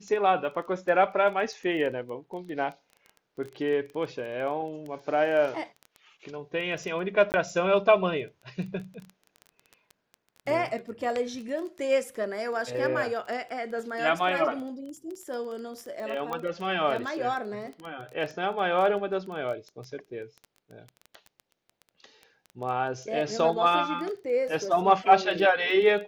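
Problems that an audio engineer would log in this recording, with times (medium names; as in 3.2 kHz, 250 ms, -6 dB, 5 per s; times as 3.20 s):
crackle 13 per s -34 dBFS
7.32–7.34 s: dropout 19 ms
16.33 s: pop -19 dBFS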